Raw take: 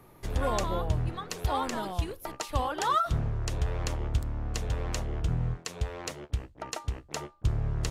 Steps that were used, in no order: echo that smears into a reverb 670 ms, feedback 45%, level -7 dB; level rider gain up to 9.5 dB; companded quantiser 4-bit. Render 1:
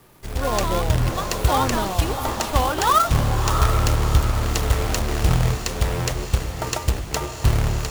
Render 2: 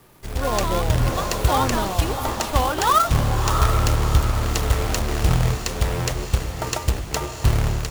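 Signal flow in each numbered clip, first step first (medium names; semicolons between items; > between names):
companded quantiser > level rider > echo that smears into a reverb; companded quantiser > echo that smears into a reverb > level rider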